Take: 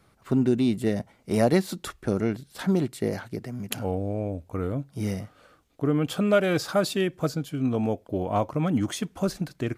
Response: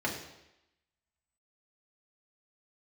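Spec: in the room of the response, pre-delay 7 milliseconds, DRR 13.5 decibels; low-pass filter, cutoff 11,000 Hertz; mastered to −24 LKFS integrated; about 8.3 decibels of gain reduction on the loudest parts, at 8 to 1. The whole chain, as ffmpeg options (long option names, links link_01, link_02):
-filter_complex "[0:a]lowpass=11000,acompressor=threshold=-25dB:ratio=8,asplit=2[link_01][link_02];[1:a]atrim=start_sample=2205,adelay=7[link_03];[link_02][link_03]afir=irnorm=-1:irlink=0,volume=-21dB[link_04];[link_01][link_04]amix=inputs=2:normalize=0,volume=7.5dB"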